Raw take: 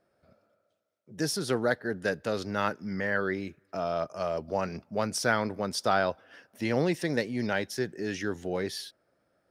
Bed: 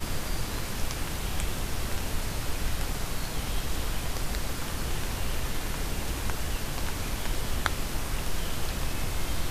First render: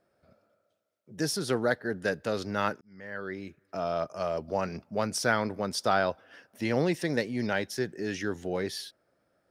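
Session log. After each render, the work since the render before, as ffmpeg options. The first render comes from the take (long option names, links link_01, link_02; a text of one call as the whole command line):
ffmpeg -i in.wav -filter_complex "[0:a]asplit=2[link_01][link_02];[link_01]atrim=end=2.81,asetpts=PTS-STARTPTS,afade=type=out:start_time=2.806:duration=0.004:curve=hsin[link_03];[link_02]atrim=start=2.81,asetpts=PTS-STARTPTS,afade=type=in:duration=1.05[link_04];[link_03][link_04]concat=n=2:v=0:a=1" out.wav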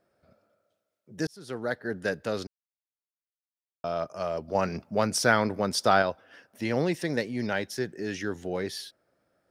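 ffmpeg -i in.wav -filter_complex "[0:a]asplit=6[link_01][link_02][link_03][link_04][link_05][link_06];[link_01]atrim=end=1.27,asetpts=PTS-STARTPTS,afade=type=out:start_time=1.266:duration=0.004:curve=hsin[link_07];[link_02]atrim=start=1.27:end=2.47,asetpts=PTS-STARTPTS,afade=type=in:duration=0.65,afade=type=out:start_time=1.196:duration=0.004:curve=hsin[link_08];[link_03]atrim=start=2.47:end=3.84,asetpts=PTS-STARTPTS,volume=0[link_09];[link_04]atrim=start=3.84:end=4.552,asetpts=PTS-STARTPTS,afade=type=in:duration=0.004:curve=hsin[link_10];[link_05]atrim=start=4.548:end=6.022,asetpts=PTS-STARTPTS,volume=4dB[link_11];[link_06]atrim=start=6.018[link_12];[link_07][link_08][link_09][link_10]concat=n=4:v=0:a=1[link_13];[link_13][link_11]acrossfade=duration=0.004:curve1=hsin:curve2=hsin[link_14];[link_14][link_12]acrossfade=duration=0.004:curve1=hsin:curve2=hsin" out.wav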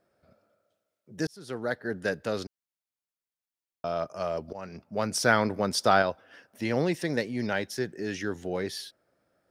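ffmpeg -i in.wav -filter_complex "[0:a]asplit=2[link_01][link_02];[link_01]atrim=end=4.53,asetpts=PTS-STARTPTS,afade=type=out:start_time=4.526:duration=0.004:curve=hsin:silence=0.11885[link_03];[link_02]atrim=start=4.53,asetpts=PTS-STARTPTS,afade=type=in:duration=0.8:silence=0.11885[link_04];[link_03][link_04]concat=n=2:v=0:a=1" out.wav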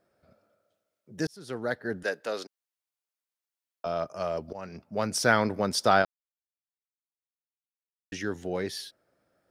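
ffmpeg -i in.wav -filter_complex "[0:a]asettb=1/sr,asplit=3[link_01][link_02][link_03];[link_01]atrim=end=2.034[link_04];[link_02]atrim=start=2.03:end=3.86,asetpts=PTS-STARTPTS,afade=type=in:duration=0.004:curve=qsin,afade=type=out:start_time=1.826:duration=0.004:curve=qsin,highpass=400[link_05];[link_03]atrim=start=3.856[link_06];[link_04][link_05]acrossfade=duration=0.004:curve1=hsin:curve2=qsin[link_07];[link_07][link_06]acrossfade=duration=0.004:curve1=qsin:curve2=hsin,asplit=3[link_08][link_09][link_10];[link_08]atrim=end=6.05,asetpts=PTS-STARTPTS,afade=type=out:start_time=6.046:duration=0.004:curve=hsin[link_11];[link_09]atrim=start=6.05:end=8.12,asetpts=PTS-STARTPTS,volume=0[link_12];[link_10]atrim=start=8.12,asetpts=PTS-STARTPTS,afade=type=in:duration=0.004:curve=hsin[link_13];[link_11][link_12][link_13]concat=n=3:v=0:a=1" out.wav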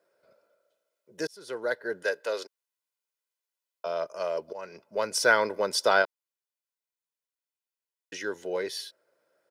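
ffmpeg -i in.wav -af "highpass=320,aecho=1:1:2:0.52" out.wav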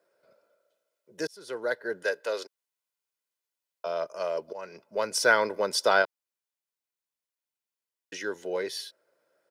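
ffmpeg -i in.wav -af "highpass=89" out.wav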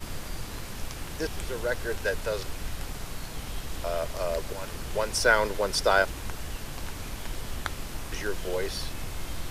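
ffmpeg -i in.wav -i bed.wav -filter_complex "[1:a]volume=-5dB[link_01];[0:a][link_01]amix=inputs=2:normalize=0" out.wav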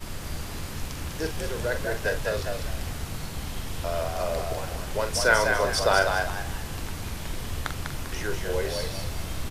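ffmpeg -i in.wav -filter_complex "[0:a]asplit=2[link_01][link_02];[link_02]adelay=44,volume=-8dB[link_03];[link_01][link_03]amix=inputs=2:normalize=0,asplit=2[link_04][link_05];[link_05]asplit=4[link_06][link_07][link_08][link_09];[link_06]adelay=198,afreqshift=63,volume=-5dB[link_10];[link_07]adelay=396,afreqshift=126,volume=-14.6dB[link_11];[link_08]adelay=594,afreqshift=189,volume=-24.3dB[link_12];[link_09]adelay=792,afreqshift=252,volume=-33.9dB[link_13];[link_10][link_11][link_12][link_13]amix=inputs=4:normalize=0[link_14];[link_04][link_14]amix=inputs=2:normalize=0" out.wav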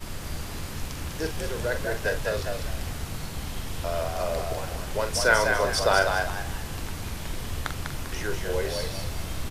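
ffmpeg -i in.wav -af anull out.wav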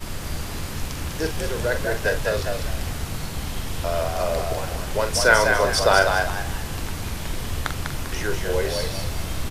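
ffmpeg -i in.wav -af "volume=4.5dB" out.wav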